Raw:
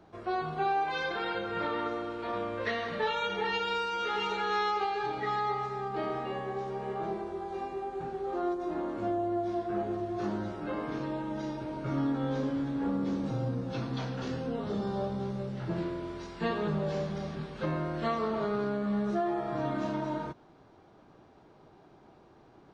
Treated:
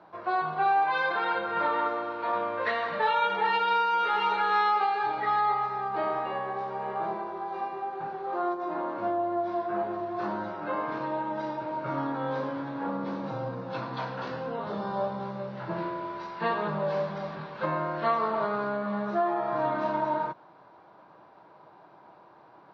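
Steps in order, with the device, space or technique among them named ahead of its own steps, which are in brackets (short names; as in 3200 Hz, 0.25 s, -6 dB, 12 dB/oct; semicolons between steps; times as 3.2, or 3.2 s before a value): kitchen radio (speaker cabinet 190–4500 Hz, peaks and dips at 250 Hz -9 dB, 400 Hz -6 dB, 600 Hz +4 dB, 990 Hz +10 dB, 1500 Hz +4 dB, 3200 Hz -4 dB); gain +2.5 dB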